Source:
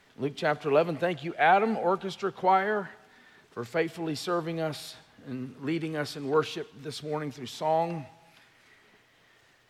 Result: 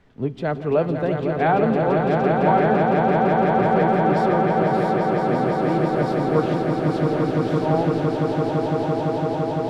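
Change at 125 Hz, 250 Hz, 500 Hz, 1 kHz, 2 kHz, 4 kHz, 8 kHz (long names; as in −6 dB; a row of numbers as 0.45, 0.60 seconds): +15.5 dB, +13.5 dB, +10.0 dB, +8.5 dB, +5.0 dB, 0.0 dB, can't be measured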